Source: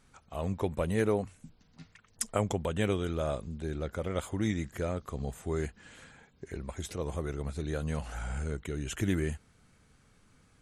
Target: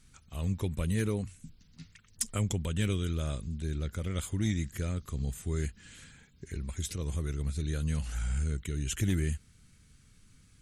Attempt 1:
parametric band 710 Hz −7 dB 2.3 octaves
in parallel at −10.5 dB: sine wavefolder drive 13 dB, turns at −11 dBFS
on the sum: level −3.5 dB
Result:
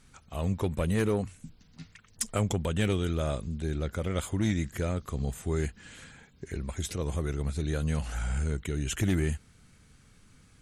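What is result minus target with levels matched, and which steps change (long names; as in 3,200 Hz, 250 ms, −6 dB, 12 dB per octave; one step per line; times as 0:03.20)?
1,000 Hz band +6.0 dB
change: parametric band 710 Hz −18.5 dB 2.3 octaves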